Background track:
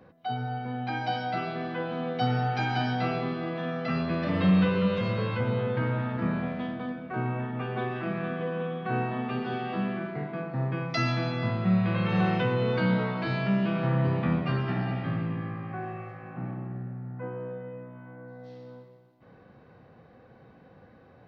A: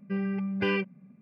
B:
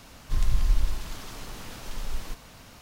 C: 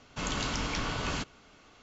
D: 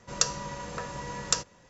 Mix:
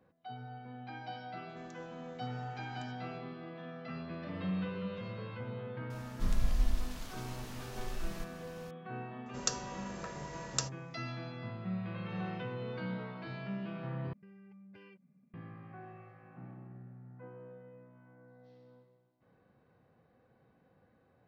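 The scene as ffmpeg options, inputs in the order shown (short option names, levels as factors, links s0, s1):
-filter_complex "[4:a]asplit=2[s0][s1];[0:a]volume=0.2[s2];[s0]acompressor=threshold=0.00631:ratio=6:attack=3.2:release=140:knee=1:detection=peak[s3];[1:a]acompressor=threshold=0.01:ratio=6:attack=3.2:release=140:knee=1:detection=peak[s4];[s2]asplit=2[s5][s6];[s5]atrim=end=14.134[s7];[s4]atrim=end=1.21,asetpts=PTS-STARTPTS,volume=0.2[s8];[s6]atrim=start=15.336[s9];[s3]atrim=end=1.69,asetpts=PTS-STARTPTS,volume=0.15,afade=t=in:d=0.004:c=hsin,afade=t=out:st=1.686:d=0.004:c=hsin,adelay=1490[s10];[2:a]atrim=end=2.81,asetpts=PTS-STARTPTS,volume=0.447,afade=t=in:d=0.004:c=hsin,afade=t=out:st=2.806:d=0.004:c=hsin,adelay=5900[s11];[s1]atrim=end=1.69,asetpts=PTS-STARTPTS,volume=0.398,afade=t=in:d=0.004:c=hsin,afade=t=out:st=1.686:d=0.004:c=hsin,adelay=9260[s12];[s7][s8]acrossfade=d=0.004:c1=hsin:c2=hsin[s13];[s13][s9]acrossfade=d=0.004:c1=hsin:c2=hsin[s14];[s14][s10][s11][s12]amix=inputs=4:normalize=0"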